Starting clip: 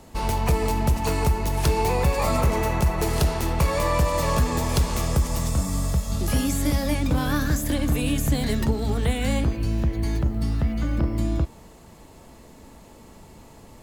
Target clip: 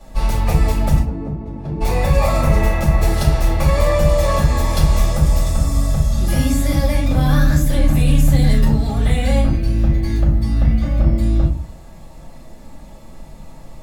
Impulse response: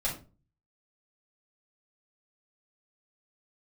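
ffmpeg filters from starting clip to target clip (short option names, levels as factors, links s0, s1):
-filter_complex "[0:a]asplit=3[s0][s1][s2];[s0]afade=t=out:st=0.98:d=0.02[s3];[s1]bandpass=f=260:t=q:w=1.5:csg=0,afade=t=in:st=0.98:d=0.02,afade=t=out:st=1.8:d=0.02[s4];[s2]afade=t=in:st=1.8:d=0.02[s5];[s3][s4][s5]amix=inputs=3:normalize=0[s6];[1:a]atrim=start_sample=2205[s7];[s6][s7]afir=irnorm=-1:irlink=0,volume=0.794"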